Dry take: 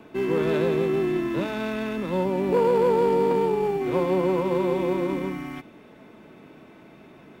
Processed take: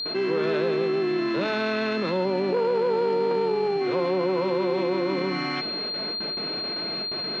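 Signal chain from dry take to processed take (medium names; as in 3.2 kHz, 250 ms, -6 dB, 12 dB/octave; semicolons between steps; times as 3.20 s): cabinet simulation 210–5600 Hz, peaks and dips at 270 Hz -8 dB, 920 Hz -3 dB, 1.4 kHz +3 dB; gate with hold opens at -41 dBFS; whistle 4.2 kHz -44 dBFS; level flattener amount 70%; trim -3 dB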